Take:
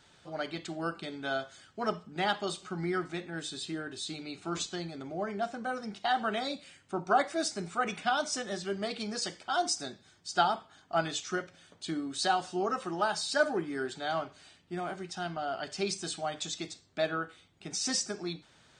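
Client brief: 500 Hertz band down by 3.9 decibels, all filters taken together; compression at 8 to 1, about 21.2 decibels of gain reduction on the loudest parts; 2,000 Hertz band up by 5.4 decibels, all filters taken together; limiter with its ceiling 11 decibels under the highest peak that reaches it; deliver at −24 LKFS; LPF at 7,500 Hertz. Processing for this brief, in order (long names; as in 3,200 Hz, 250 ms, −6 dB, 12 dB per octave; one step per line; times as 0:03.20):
low-pass filter 7,500 Hz
parametric band 500 Hz −6.5 dB
parametric band 2,000 Hz +8.5 dB
downward compressor 8 to 1, threshold −43 dBFS
level +25 dB
brickwall limiter −14 dBFS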